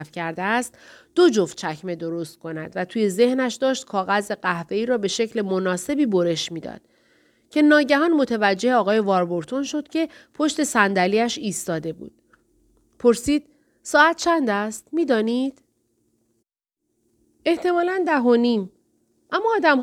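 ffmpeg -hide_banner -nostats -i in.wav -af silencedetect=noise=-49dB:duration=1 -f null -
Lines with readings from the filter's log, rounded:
silence_start: 15.59
silence_end: 17.46 | silence_duration: 1.87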